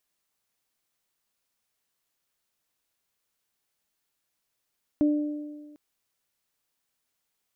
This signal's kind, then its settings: additive tone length 0.75 s, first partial 297 Hz, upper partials -13 dB, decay 1.50 s, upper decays 1.47 s, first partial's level -17.5 dB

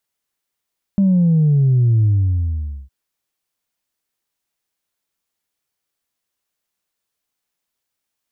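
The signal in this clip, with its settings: sub drop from 200 Hz, over 1.91 s, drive 0 dB, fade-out 0.85 s, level -11 dB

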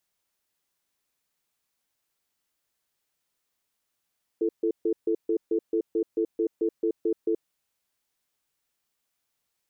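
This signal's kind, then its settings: cadence 336 Hz, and 441 Hz, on 0.08 s, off 0.14 s, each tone -24.5 dBFS 2.94 s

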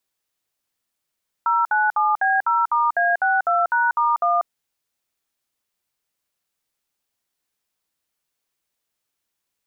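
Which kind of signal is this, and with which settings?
DTMF "097B0*A62#*1", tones 191 ms, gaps 60 ms, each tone -18.5 dBFS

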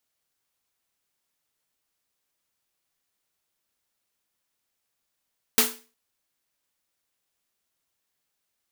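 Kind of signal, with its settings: snare drum length 0.36 s, tones 240 Hz, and 440 Hz, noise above 730 Hz, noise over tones 10.5 dB, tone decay 0.36 s, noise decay 0.33 s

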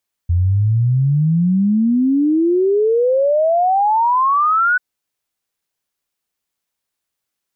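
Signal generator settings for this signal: log sweep 84 Hz -> 1.5 kHz 4.49 s -11.5 dBFS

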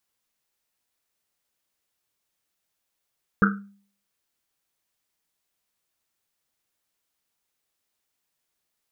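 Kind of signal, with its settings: Risset drum, pitch 200 Hz, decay 0.50 s, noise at 1.4 kHz, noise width 340 Hz, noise 40%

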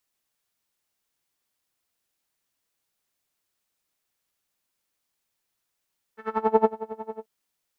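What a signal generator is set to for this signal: synth patch with tremolo A4, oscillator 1 saw, detune 30 cents, sub -11 dB, noise -11.5 dB, filter lowpass, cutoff 620 Hz, filter envelope 1.5 oct, filter decay 0.36 s, filter sustain 20%, attack 477 ms, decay 0.06 s, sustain -17 dB, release 0.10 s, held 0.99 s, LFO 11 Hz, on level 24 dB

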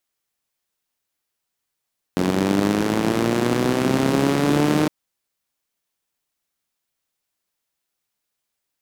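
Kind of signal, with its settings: four-cylinder engine model, changing speed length 2.71 s, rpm 2700, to 4600, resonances 200/290 Hz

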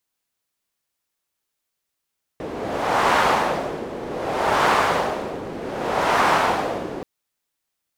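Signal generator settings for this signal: wind-like swept noise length 4.63 s, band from 410 Hz, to 1 kHz, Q 1.4, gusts 3, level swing 13.5 dB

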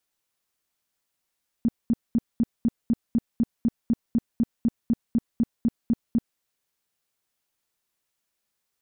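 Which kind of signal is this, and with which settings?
tone bursts 232 Hz, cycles 8, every 0.25 s, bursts 19, -17 dBFS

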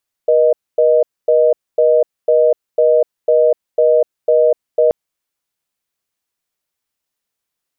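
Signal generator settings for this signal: call progress tone reorder tone, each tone -11 dBFS 4.63 s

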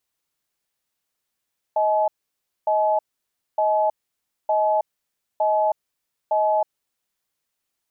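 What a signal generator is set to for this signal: cadence 630 Hz, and 853 Hz, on 0.32 s, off 0.59 s, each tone -19.5 dBFS 5.23 s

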